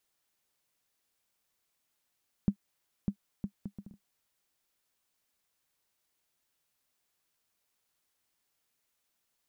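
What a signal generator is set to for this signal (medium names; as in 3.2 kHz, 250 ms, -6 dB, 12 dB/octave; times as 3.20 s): bouncing ball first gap 0.60 s, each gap 0.6, 200 Hz, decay 81 ms -15.5 dBFS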